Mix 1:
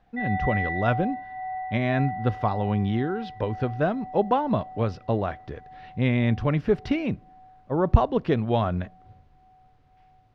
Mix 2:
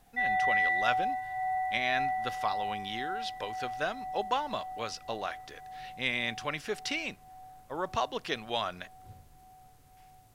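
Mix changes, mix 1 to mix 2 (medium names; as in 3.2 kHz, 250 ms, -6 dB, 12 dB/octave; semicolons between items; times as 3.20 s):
speech: add band-pass filter 3.6 kHz, Q 0.53; master: remove distance through air 260 m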